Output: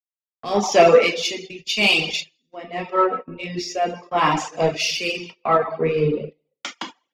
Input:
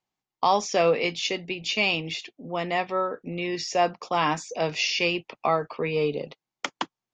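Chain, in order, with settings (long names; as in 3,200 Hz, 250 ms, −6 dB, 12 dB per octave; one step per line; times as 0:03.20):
reverb whose tail is shaped and stops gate 490 ms falling, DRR 0 dB
in parallel at −3.5 dB: soft clipping −23.5 dBFS, distortion −8 dB
on the sum: reverb reduction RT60 0.94 s
noise gate −29 dBFS, range −21 dB
rotating-speaker cabinet horn 0.85 Hz
multiband upward and downward expander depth 100%
level +3 dB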